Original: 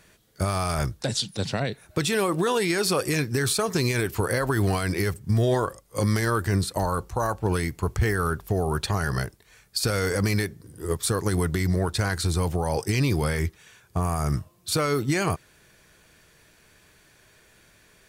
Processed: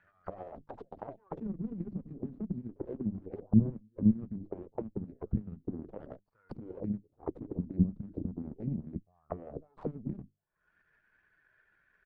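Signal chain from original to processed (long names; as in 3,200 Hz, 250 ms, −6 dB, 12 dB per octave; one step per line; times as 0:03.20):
spectral dynamics exaggerated over time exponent 1.5
mains-hum notches 50/100/150/200/250/300 Hz
upward compression, threshold −31 dBFS
tempo change 1.5×
echo ahead of the sound 235 ms −23 dB
harmonic generator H 2 −10 dB, 3 −10 dB, 7 −33 dB, 8 −23 dB, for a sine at −15 dBFS
envelope-controlled low-pass 210–1,600 Hz down, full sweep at −33 dBFS
level −2.5 dB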